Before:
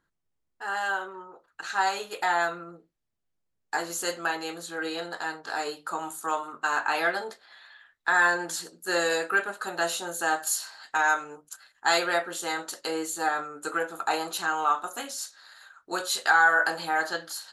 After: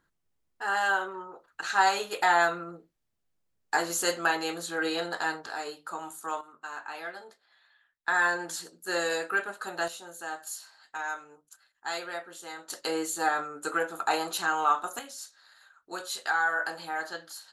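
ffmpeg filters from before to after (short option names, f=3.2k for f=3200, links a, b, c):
-af "asetnsamples=n=441:p=0,asendcmd='5.47 volume volume -5dB;6.41 volume volume -13dB;8.08 volume volume -3.5dB;9.88 volume volume -11dB;12.7 volume volume 0dB;14.99 volume volume -7dB',volume=2.5dB"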